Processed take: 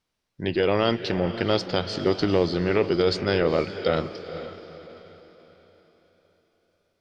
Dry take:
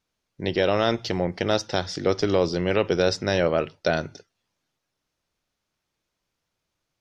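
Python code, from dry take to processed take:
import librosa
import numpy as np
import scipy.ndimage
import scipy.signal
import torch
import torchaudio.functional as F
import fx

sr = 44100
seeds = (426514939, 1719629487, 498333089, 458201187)

y = fx.echo_diffused(x, sr, ms=470, feedback_pct=42, wet_db=-11.5)
y = fx.formant_shift(y, sr, semitones=-2)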